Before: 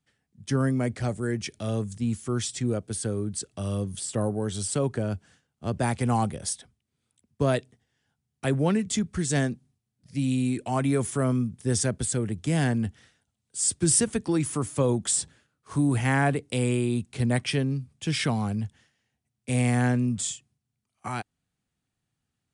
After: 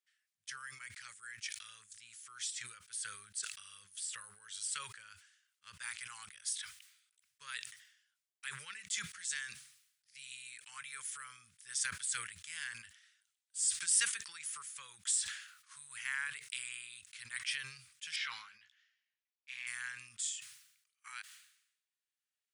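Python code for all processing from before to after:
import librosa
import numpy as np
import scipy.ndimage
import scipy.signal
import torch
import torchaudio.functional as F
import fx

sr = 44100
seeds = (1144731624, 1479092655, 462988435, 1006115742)

y = fx.chain(x, sr, fx.moving_average(points=5),
    fx.low_shelf(hz=330.0, db=-11.5),
    fx.doubler(ms=15.0, db=-8.0), at=(18.16, 19.67))
y = scipy.signal.sosfilt(scipy.signal.cheby2(4, 40, 740.0, 'highpass', fs=sr, output='sos'), y)
y = fx.sustainer(y, sr, db_per_s=75.0)
y = y * librosa.db_to_amplitude(-7.5)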